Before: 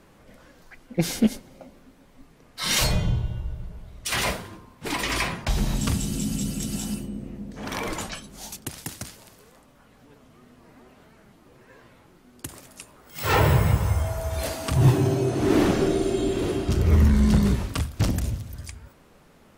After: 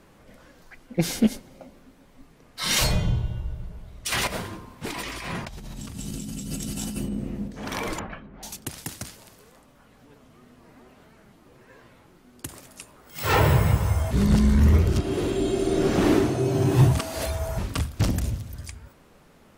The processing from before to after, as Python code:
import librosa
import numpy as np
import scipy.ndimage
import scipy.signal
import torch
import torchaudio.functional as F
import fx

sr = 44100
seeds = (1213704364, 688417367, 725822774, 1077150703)

y = fx.over_compress(x, sr, threshold_db=-33.0, ratio=-1.0, at=(4.27, 7.48))
y = fx.lowpass(y, sr, hz=2100.0, slope=24, at=(7.99, 8.43))
y = fx.edit(y, sr, fx.reverse_span(start_s=14.11, length_s=3.47), tone=tone)